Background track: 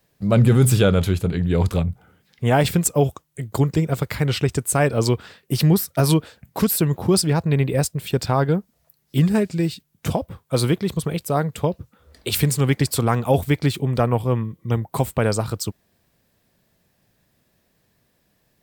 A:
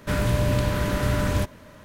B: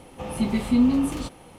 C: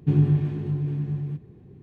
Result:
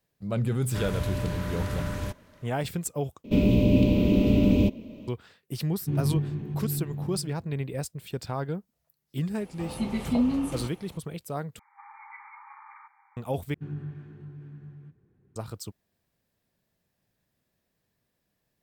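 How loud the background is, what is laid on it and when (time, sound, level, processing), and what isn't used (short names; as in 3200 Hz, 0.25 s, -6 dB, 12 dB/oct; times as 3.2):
background track -12.5 dB
0.67 add A -9 dB
3.24 replace with A -1.5 dB + EQ curve 150 Hz 0 dB, 220 Hz +14 dB, 490 Hz +5 dB, 1700 Hz -26 dB, 2500 Hz +4 dB, 4400 Hz -7 dB, 11000 Hz -20 dB, 15000 Hz -2 dB
5.8 add C -8.5 dB + reverse delay 0.124 s, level -0.5 dB
9.4 add B -5.5 dB
11.59 replace with B -7 dB + FFT band-pass 790–2400 Hz
13.54 replace with C -17 dB + bell 1500 Hz +12.5 dB 0.6 oct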